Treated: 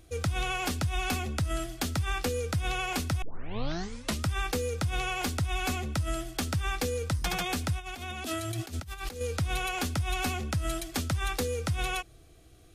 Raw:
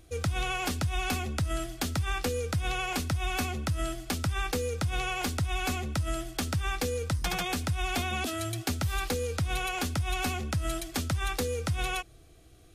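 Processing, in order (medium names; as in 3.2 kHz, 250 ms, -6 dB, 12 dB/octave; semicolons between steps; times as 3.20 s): 3.22 s: tape start 1.04 s; 7.77–9.21 s: compressor with a negative ratio -35 dBFS, ratio -0.5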